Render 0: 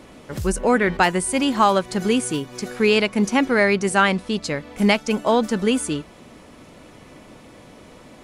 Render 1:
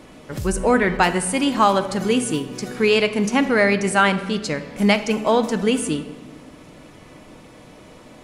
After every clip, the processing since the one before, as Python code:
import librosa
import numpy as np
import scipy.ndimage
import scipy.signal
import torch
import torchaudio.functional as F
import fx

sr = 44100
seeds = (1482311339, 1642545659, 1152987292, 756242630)

y = fx.room_shoebox(x, sr, seeds[0], volume_m3=990.0, walls='mixed', distance_m=0.52)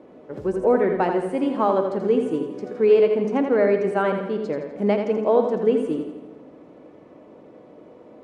y = fx.bandpass_q(x, sr, hz=440.0, q=1.4)
y = fx.echo_feedback(y, sr, ms=83, feedback_pct=49, wet_db=-7)
y = F.gain(torch.from_numpy(y), 1.5).numpy()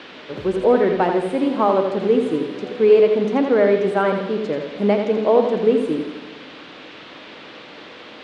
y = fx.dmg_noise_band(x, sr, seeds[1], low_hz=690.0, high_hz=3700.0, level_db=-45.0)
y = F.gain(torch.from_numpy(y), 3.0).numpy()